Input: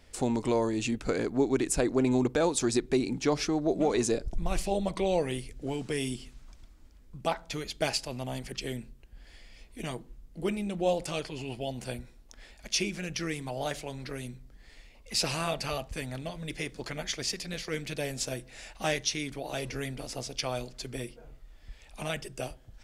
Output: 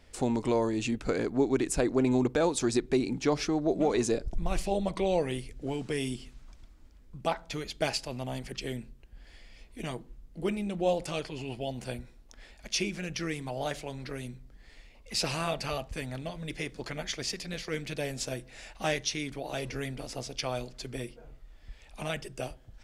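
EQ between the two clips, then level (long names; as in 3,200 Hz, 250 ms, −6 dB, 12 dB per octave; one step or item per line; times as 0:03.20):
high-shelf EQ 5,700 Hz −4.5 dB
0.0 dB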